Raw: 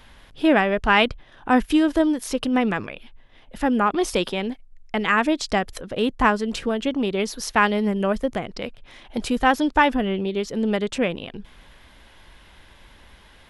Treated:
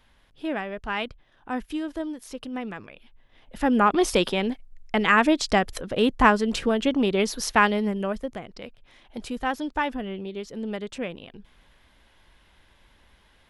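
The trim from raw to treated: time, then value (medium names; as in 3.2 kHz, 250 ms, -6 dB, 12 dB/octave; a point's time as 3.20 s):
2.81 s -12 dB
3.83 s +1 dB
7.46 s +1 dB
8.37 s -9 dB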